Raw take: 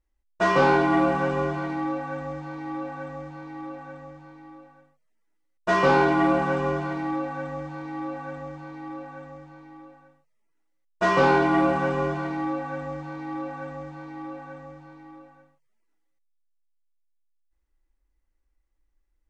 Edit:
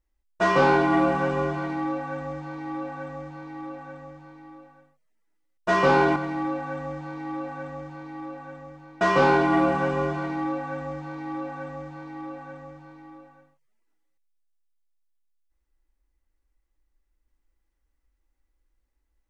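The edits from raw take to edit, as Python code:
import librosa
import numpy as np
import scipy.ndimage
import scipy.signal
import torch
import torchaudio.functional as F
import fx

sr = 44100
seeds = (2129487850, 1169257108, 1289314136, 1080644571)

y = fx.edit(x, sr, fx.cut(start_s=6.16, length_s=0.68),
    fx.cut(start_s=9.69, length_s=1.33), tone=tone)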